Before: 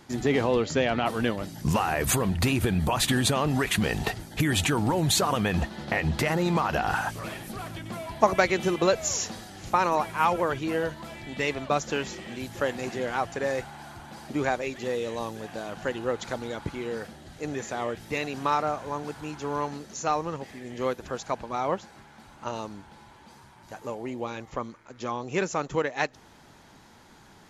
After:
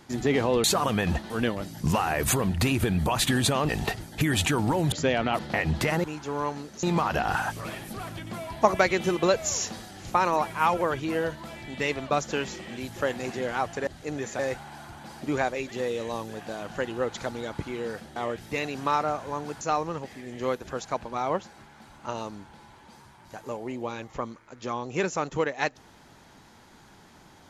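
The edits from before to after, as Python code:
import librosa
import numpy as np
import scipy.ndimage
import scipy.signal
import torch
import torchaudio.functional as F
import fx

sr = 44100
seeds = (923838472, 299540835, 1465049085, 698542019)

y = fx.edit(x, sr, fx.swap(start_s=0.64, length_s=0.47, other_s=5.11, other_length_s=0.66),
    fx.cut(start_s=3.5, length_s=0.38),
    fx.move(start_s=17.23, length_s=0.52, to_s=13.46),
    fx.move(start_s=19.2, length_s=0.79, to_s=6.42), tone=tone)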